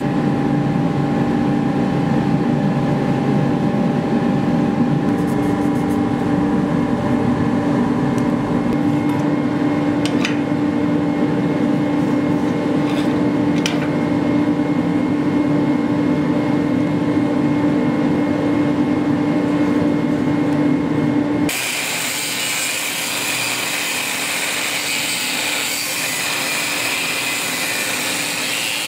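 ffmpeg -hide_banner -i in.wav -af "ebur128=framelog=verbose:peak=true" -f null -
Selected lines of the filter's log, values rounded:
Integrated loudness:
  I:         -17.8 LUFS
  Threshold: -27.8 LUFS
Loudness range:
  LRA:         0.8 LU
  Threshold: -37.8 LUFS
  LRA low:   -18.2 LUFS
  LRA high:  -17.4 LUFS
True peak:
  Peak:       -3.1 dBFS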